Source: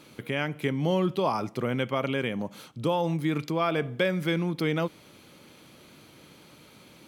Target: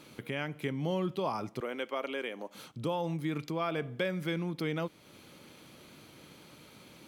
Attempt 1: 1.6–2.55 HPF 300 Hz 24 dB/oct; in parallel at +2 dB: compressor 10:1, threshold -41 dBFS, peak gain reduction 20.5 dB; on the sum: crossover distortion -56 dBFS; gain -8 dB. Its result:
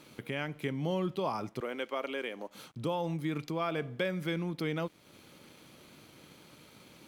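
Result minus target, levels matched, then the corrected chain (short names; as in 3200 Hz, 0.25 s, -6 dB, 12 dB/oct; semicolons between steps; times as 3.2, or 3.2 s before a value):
crossover distortion: distortion +10 dB
1.6–2.55 HPF 300 Hz 24 dB/oct; in parallel at +2 dB: compressor 10:1, threshold -41 dBFS, peak gain reduction 20.5 dB; on the sum: crossover distortion -66.5 dBFS; gain -8 dB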